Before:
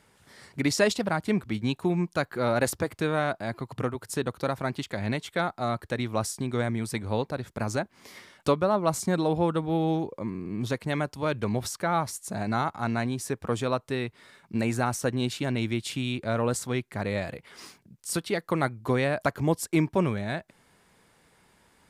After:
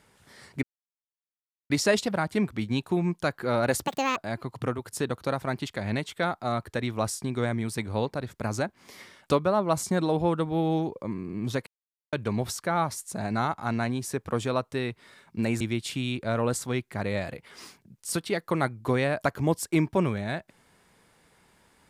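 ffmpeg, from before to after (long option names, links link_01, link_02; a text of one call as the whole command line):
ffmpeg -i in.wav -filter_complex "[0:a]asplit=7[link_01][link_02][link_03][link_04][link_05][link_06][link_07];[link_01]atrim=end=0.63,asetpts=PTS-STARTPTS,afade=type=out:start_time=0.626:duration=0.004:curve=hsin,apad=pad_dur=1.07[link_08];[link_02]atrim=start=0.63:end=2.784,asetpts=PTS-STARTPTS,afade=type=in:duration=0.004:curve=hsin[link_09];[link_03]atrim=start=2.78:end=3.33,asetpts=PTS-STARTPTS,asetrate=76734,aresample=44100[link_10];[link_04]atrim=start=3.326:end=10.83,asetpts=PTS-STARTPTS,afade=type=out:start_time=7.5:duration=0.004:curve=hsin[link_11];[link_05]atrim=start=10.83:end=11.29,asetpts=PTS-STARTPTS,volume=0[link_12];[link_06]atrim=start=11.29:end=14.772,asetpts=PTS-STARTPTS,afade=type=in:duration=0.004:curve=hsin[link_13];[link_07]atrim=start=15.608[link_14];[link_08][link_09]concat=n=2:v=0:a=1[link_15];[link_15][link_10]acrossfade=duration=0.004:curve1=hsin:curve2=hsin[link_16];[link_11][link_12][link_13]concat=n=3:v=0:a=1[link_17];[link_16][link_17]acrossfade=duration=0.004:curve1=hsin:curve2=hsin[link_18];[link_18][link_14]acrossfade=duration=0.004:curve1=hsin:curve2=hsin" out.wav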